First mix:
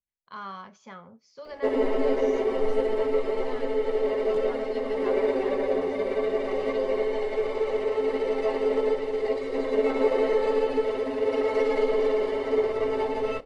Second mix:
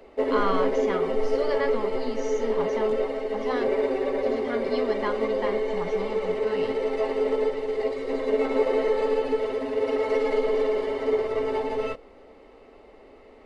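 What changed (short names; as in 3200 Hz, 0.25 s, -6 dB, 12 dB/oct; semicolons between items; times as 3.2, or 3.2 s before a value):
speech +11.0 dB; background: entry -1.45 s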